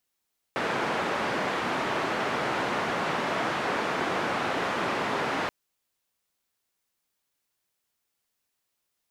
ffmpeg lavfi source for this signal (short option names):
-f lavfi -i "anoisesrc=c=white:d=4.93:r=44100:seed=1,highpass=f=170,lowpass=f=1400,volume=-11.6dB"